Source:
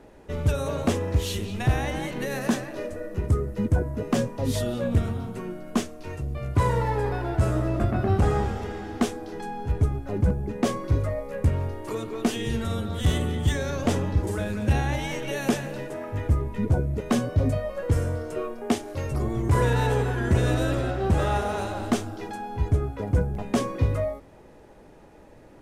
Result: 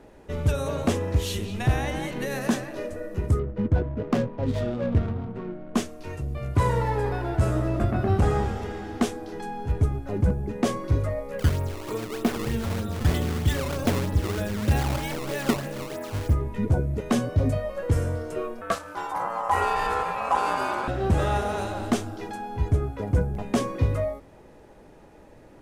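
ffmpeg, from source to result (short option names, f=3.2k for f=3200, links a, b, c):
-filter_complex "[0:a]asettb=1/sr,asplit=3[a][b][c];[a]atrim=end=3.394[d];[b]atrim=start=3.39:end=5.75,asetpts=PTS-STARTPTS,afade=t=in:d=0.004:c=qsin,afade=t=out:st=2.356:d=0.004:c=qsin,adynamicsmooth=sensitivity=4.5:basefreq=800[e];[c]atrim=start=5.746[f];[d][e]acrossfade=d=0.004:c1=hsin:c2=qsin[g];[g][f]acrossfade=d=0.004:c1=qsin:c2=hsin,asettb=1/sr,asplit=3[h][i][j];[h]atrim=end=11.394[k];[i]atrim=start=11.39:end=16.34,asetpts=PTS-STARTPTS,afade=t=in:d=0.004:c=qsin,afade=t=out:st=4.946:d=0.004:c=qsin,acrusher=samples=16:mix=1:aa=0.000001:lfo=1:lforange=25.6:lforate=3.2[l];[j]atrim=start=16.336[m];[k][l]acrossfade=d=0.004:c1=hsin:c2=qsin[n];[n][m]acrossfade=d=0.004:c1=qsin:c2=hsin,asettb=1/sr,asplit=3[o][p][q];[o]atrim=end=18.614[r];[p]atrim=start=18.61:end=20.88,asetpts=PTS-STARTPTS,afade=t=in:d=0.004:c=qsin,afade=t=out:st=2.266:d=0.004:c=qsin,aeval=exprs='val(0)*sin(2*PI*910*n/s)':c=same[s];[q]atrim=start=20.876[t];[r][s]acrossfade=d=0.004:c1=hsin:c2=qsin[u];[u][t]acrossfade=d=0.004:c1=qsin:c2=hsin"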